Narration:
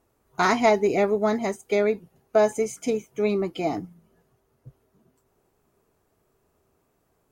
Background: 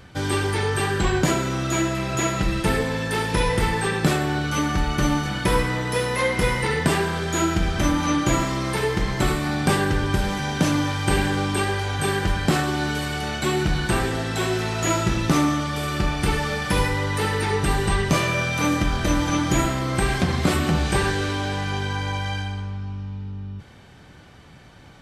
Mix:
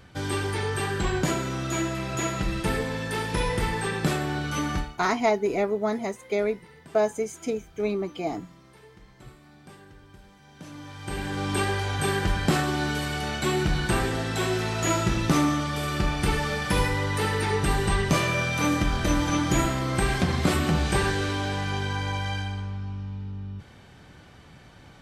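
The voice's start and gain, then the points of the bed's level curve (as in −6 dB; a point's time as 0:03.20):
4.60 s, −3.5 dB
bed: 0:04.78 −5 dB
0:05.03 −28.5 dB
0:10.40 −28.5 dB
0:11.56 −2.5 dB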